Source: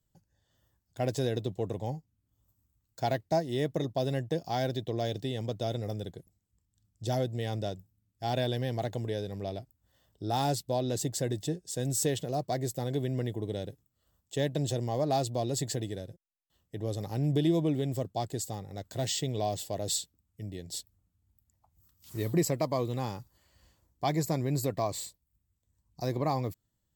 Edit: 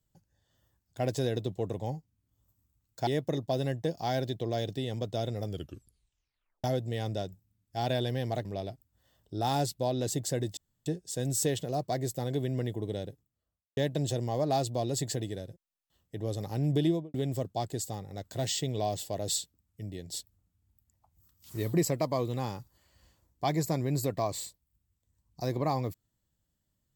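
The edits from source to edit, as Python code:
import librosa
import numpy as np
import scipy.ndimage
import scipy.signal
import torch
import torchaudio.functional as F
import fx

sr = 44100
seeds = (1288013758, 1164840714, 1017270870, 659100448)

y = fx.studio_fade_out(x, sr, start_s=13.51, length_s=0.86)
y = fx.studio_fade_out(y, sr, start_s=17.44, length_s=0.3)
y = fx.edit(y, sr, fx.cut(start_s=3.07, length_s=0.47),
    fx.tape_stop(start_s=5.93, length_s=1.18),
    fx.cut(start_s=8.92, length_s=0.42),
    fx.insert_room_tone(at_s=11.46, length_s=0.29), tone=tone)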